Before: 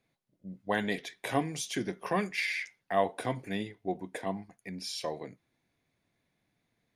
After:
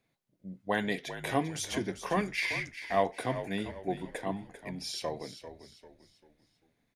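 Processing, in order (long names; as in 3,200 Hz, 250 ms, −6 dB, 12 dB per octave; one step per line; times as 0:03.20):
echo with shifted repeats 394 ms, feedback 38%, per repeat −54 Hz, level −11.5 dB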